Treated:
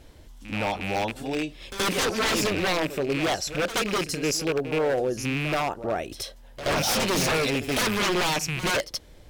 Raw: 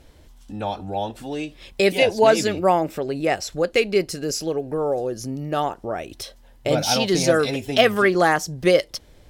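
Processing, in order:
loose part that buzzes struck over −33 dBFS, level −19 dBFS
wave folding −19 dBFS
echo ahead of the sound 76 ms −12 dB

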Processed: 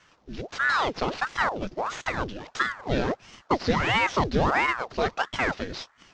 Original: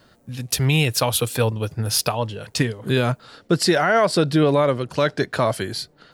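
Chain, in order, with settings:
variable-slope delta modulation 32 kbit/s
ring modulator whose carrier an LFO sweeps 850 Hz, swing 90%, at 1.5 Hz
level −2 dB

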